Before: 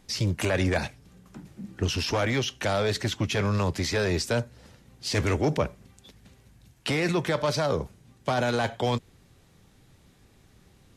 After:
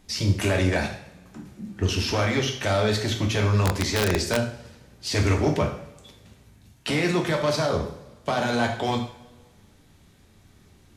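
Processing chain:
coupled-rooms reverb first 0.58 s, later 1.6 s, DRR 1.5 dB
0:03.65–0:04.37: wrap-around overflow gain 14 dB

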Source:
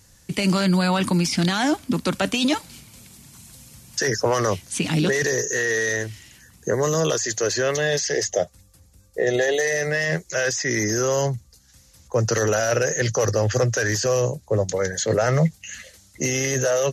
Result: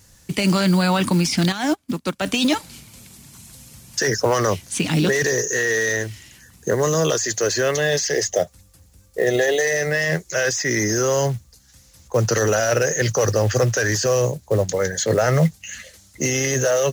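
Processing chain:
log-companded quantiser 6 bits
0:01.52–0:02.26: expander for the loud parts 2.5 to 1, over −34 dBFS
level +2 dB

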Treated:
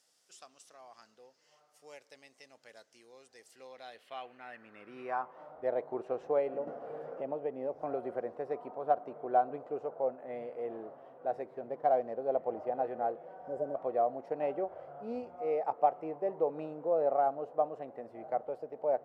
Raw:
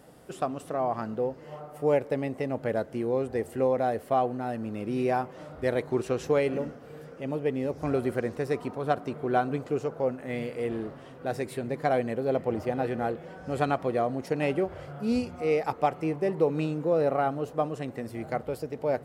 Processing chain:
0:11.46–0:12.21: running median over 15 samples
0:13.42–0:13.73: healed spectral selection 660–4,800 Hz before
band-pass filter sweep 5,800 Hz → 690 Hz, 0:03.41–0:05.69
0:06.67–0:08.21: multiband upward and downward compressor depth 70%

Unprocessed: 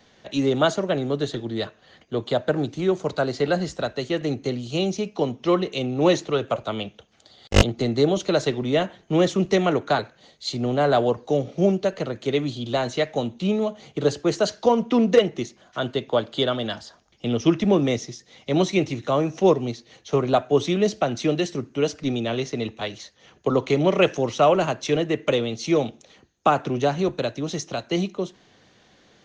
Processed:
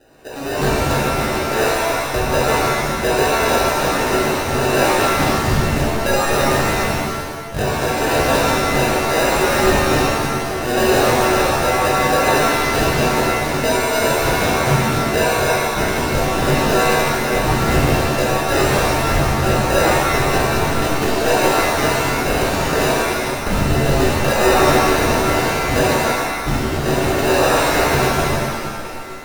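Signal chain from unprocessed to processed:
on a send: echo through a band-pass that steps 139 ms, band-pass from 310 Hz, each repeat 0.7 octaves, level −7 dB
on the sum: auto-filter high-pass saw up 0.66 Hz 650–1,800 Hz
low-pass filter 3,400 Hz 24 dB per octave
low-pass that shuts in the quiet parts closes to 1,600 Hz, open at −19 dBFS
automatic gain control gain up to 13.5 dB
decimation without filtering 40×
downward compressor, threshold −17 dBFS, peak gain reduction 11.5 dB
soft clipping −19 dBFS, distortion −11 dB
reverb with rising layers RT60 1.2 s, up +7 semitones, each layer −2 dB, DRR −5 dB
level +2 dB

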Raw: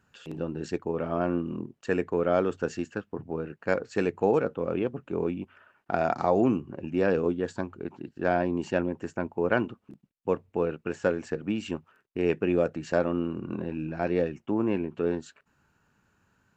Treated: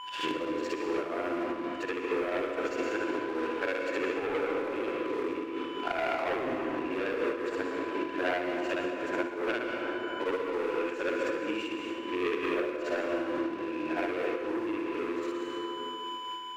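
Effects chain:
every overlapping window played backwards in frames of 156 ms
low shelf with overshoot 240 Hz −8.5 dB, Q 3
steady tone 1,000 Hz −45 dBFS
leveller curve on the samples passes 3
dense smooth reverb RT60 2 s, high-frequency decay 0.55×, pre-delay 100 ms, DRR 1.5 dB
downward compressor 4 to 1, threshold −29 dBFS, peak gain reduction 15.5 dB
parametric band 2,300 Hz +12.5 dB 1.9 octaves
amplitude modulation by smooth noise, depth 65%
level −1 dB

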